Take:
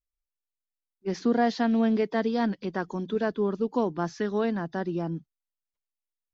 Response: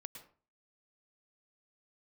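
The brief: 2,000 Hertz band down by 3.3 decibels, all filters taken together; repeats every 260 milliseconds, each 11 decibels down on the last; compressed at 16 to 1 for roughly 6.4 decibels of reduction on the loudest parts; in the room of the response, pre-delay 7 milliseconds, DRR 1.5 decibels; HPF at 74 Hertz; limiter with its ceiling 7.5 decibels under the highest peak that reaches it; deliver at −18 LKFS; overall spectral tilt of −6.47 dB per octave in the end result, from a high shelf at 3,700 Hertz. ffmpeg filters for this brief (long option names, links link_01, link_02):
-filter_complex "[0:a]highpass=74,equalizer=frequency=2000:width_type=o:gain=-3,highshelf=frequency=3700:gain=-5.5,acompressor=threshold=-26dB:ratio=16,alimiter=level_in=3dB:limit=-24dB:level=0:latency=1,volume=-3dB,aecho=1:1:260|520|780:0.282|0.0789|0.0221,asplit=2[link_01][link_02];[1:a]atrim=start_sample=2205,adelay=7[link_03];[link_02][link_03]afir=irnorm=-1:irlink=0,volume=3.5dB[link_04];[link_01][link_04]amix=inputs=2:normalize=0,volume=16.5dB"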